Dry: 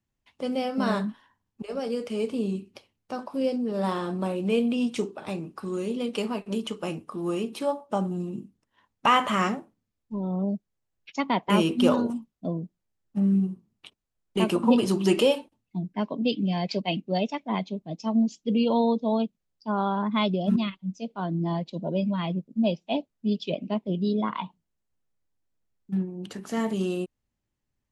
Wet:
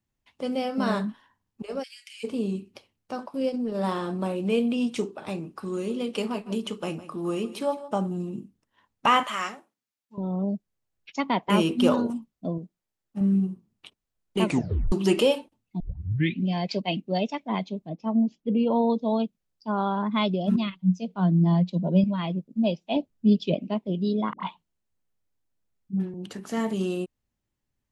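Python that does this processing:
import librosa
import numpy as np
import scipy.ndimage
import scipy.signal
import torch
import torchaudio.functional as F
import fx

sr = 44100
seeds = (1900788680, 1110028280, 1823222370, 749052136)

y = fx.steep_highpass(x, sr, hz=1800.0, slope=48, at=(1.82, 2.23), fade=0.02)
y = fx.transient(y, sr, attack_db=-2, sustain_db=-7, at=(3.26, 3.81))
y = fx.echo_single(y, sr, ms=158, db=-15.5, at=(5.6, 7.98))
y = fx.highpass(y, sr, hz=1500.0, slope=6, at=(9.23, 10.18))
y = fx.low_shelf(y, sr, hz=220.0, db=-8.5, at=(12.58, 13.21))
y = fx.lowpass(y, sr, hz=1900.0, slope=12, at=(17.89, 18.9))
y = fx.peak_eq(y, sr, hz=180.0, db=12.5, octaves=0.29, at=(20.75, 22.04))
y = fx.low_shelf(y, sr, hz=370.0, db=9.0, at=(22.96, 23.59))
y = fx.dispersion(y, sr, late='highs', ms=76.0, hz=540.0, at=(24.33, 26.14))
y = fx.edit(y, sr, fx.tape_stop(start_s=14.44, length_s=0.48),
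    fx.tape_start(start_s=15.8, length_s=0.67), tone=tone)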